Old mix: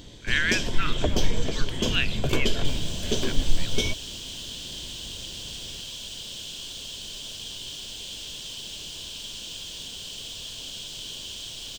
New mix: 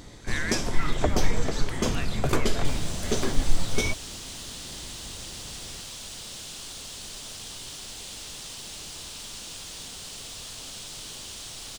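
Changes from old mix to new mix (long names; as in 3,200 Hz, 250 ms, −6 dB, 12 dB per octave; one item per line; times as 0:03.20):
speech −12.0 dB
master: add thirty-one-band graphic EQ 800 Hz +7 dB, 1,250 Hz +10 dB, 2,000 Hz +7 dB, 3,150 Hz −11 dB, 10,000 Hz +10 dB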